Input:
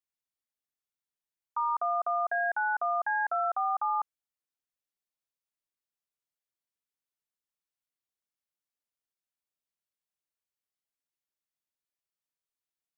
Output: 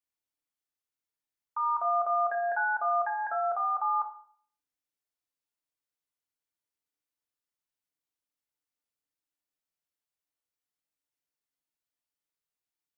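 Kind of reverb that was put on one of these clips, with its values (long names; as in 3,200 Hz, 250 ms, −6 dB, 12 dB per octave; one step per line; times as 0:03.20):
feedback delay network reverb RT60 0.53 s, low-frequency decay 1.05×, high-frequency decay 0.7×, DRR 1.5 dB
level −2.5 dB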